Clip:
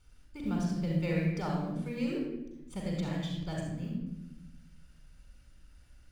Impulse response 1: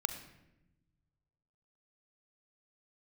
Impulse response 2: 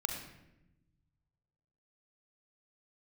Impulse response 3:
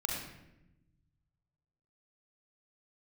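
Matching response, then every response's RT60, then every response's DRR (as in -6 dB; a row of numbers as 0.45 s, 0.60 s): 3; 0.95 s, 0.90 s, 0.90 s; 8.5 dB, 3.0 dB, -1.0 dB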